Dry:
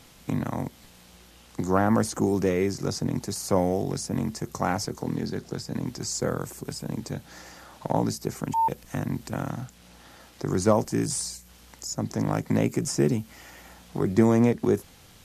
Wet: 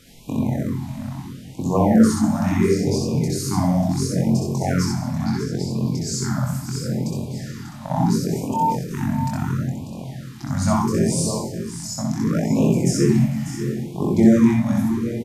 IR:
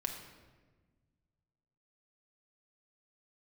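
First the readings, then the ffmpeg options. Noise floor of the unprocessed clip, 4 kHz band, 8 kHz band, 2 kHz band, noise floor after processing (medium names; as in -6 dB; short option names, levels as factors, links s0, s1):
-53 dBFS, +4.5 dB, +4.0 dB, +3.0 dB, -37 dBFS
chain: -filter_complex "[0:a]asplit=2[s0][s1];[s1]adelay=23,volume=0.668[s2];[s0][s2]amix=inputs=2:normalize=0,aecho=1:1:593:0.282,asplit=2[s3][s4];[1:a]atrim=start_sample=2205,lowshelf=f=390:g=6,adelay=63[s5];[s4][s5]afir=irnorm=-1:irlink=0,volume=0.794[s6];[s3][s6]amix=inputs=2:normalize=0,afftfilt=real='re*(1-between(b*sr/1024,380*pow(1700/380,0.5+0.5*sin(2*PI*0.73*pts/sr))/1.41,380*pow(1700/380,0.5+0.5*sin(2*PI*0.73*pts/sr))*1.41))':imag='im*(1-between(b*sr/1024,380*pow(1700/380,0.5+0.5*sin(2*PI*0.73*pts/sr))/1.41,380*pow(1700/380,0.5+0.5*sin(2*PI*0.73*pts/sr))*1.41))':win_size=1024:overlap=0.75"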